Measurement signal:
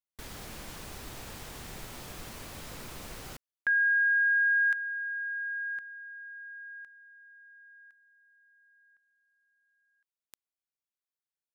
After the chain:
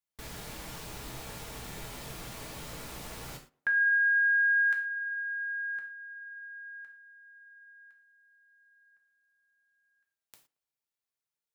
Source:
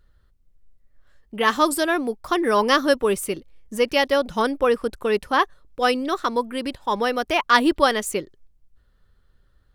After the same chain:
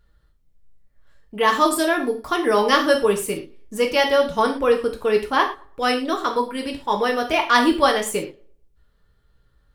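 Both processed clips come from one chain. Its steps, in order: tape echo 112 ms, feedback 33%, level -22 dB, low-pass 1.9 kHz; gated-style reverb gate 140 ms falling, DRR 1.5 dB; trim -1 dB

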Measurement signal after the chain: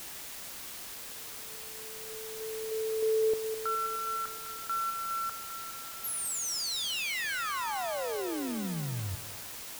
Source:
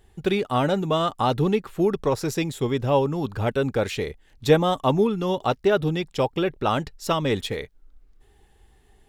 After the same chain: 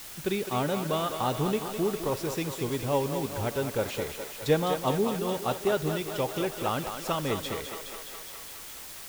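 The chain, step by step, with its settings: thinning echo 207 ms, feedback 74%, high-pass 340 Hz, level -7 dB; Schroeder reverb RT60 0.95 s, combs from 32 ms, DRR 17.5 dB; word length cut 6-bit, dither triangular; trim -7 dB

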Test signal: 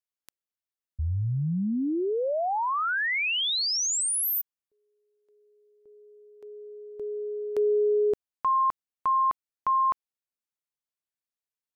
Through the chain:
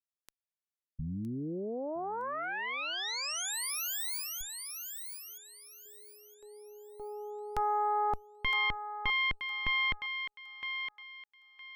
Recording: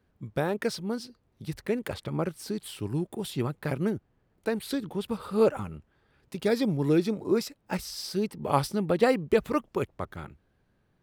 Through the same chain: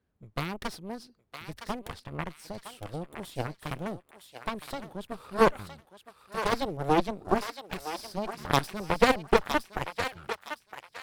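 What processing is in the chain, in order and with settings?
Chebyshev shaper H 6 -14 dB, 7 -14 dB, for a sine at -8.5 dBFS; thinning echo 963 ms, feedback 29%, high-pass 1.1 kHz, level -6 dB

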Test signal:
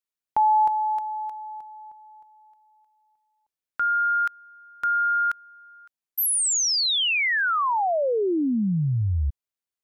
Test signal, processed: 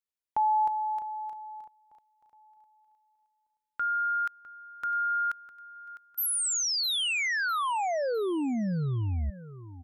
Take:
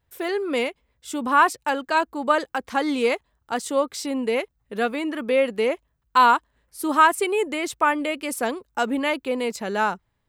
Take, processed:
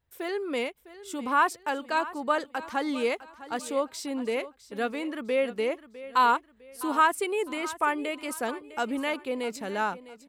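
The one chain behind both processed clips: feedback delay 655 ms, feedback 35%, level -16 dB; trim -6 dB

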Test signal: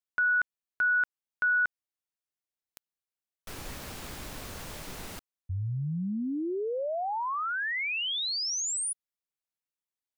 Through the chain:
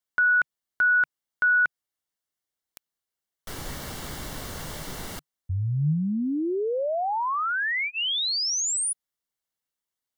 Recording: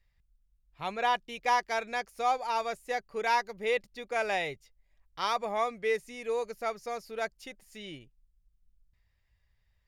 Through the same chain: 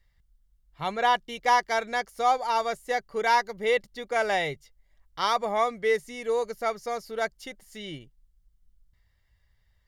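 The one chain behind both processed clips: dynamic bell 150 Hz, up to +5 dB, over -60 dBFS, Q 6; Butterworth band-stop 2.5 kHz, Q 7.6; trim +5 dB

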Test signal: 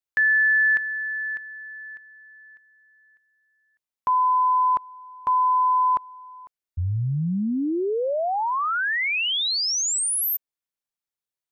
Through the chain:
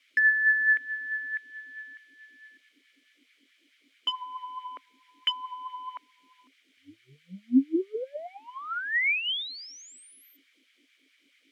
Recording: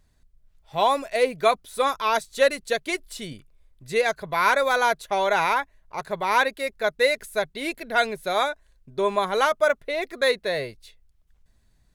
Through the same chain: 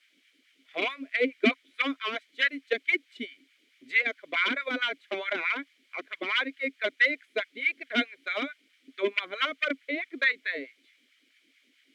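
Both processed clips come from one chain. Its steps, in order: gate with hold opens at -54 dBFS, range -10 dB; peaking EQ 980 Hz +14.5 dB 2.4 oct; transient shaper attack +7 dB, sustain -7 dB; word length cut 8-bit, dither triangular; LFO high-pass sine 4.6 Hz 270–1700 Hz; vowel filter i

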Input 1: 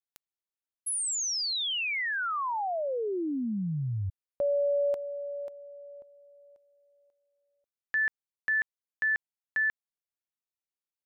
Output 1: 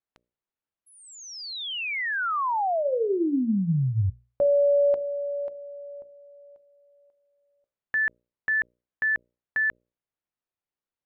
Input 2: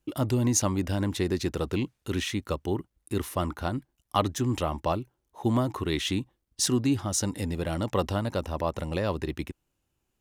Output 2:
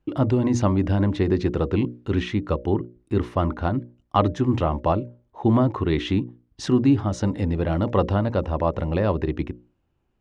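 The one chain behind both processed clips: tape spacing loss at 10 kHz 32 dB; hum notches 60/120/180/240/300/360/420/480/540/600 Hz; trim +8.5 dB

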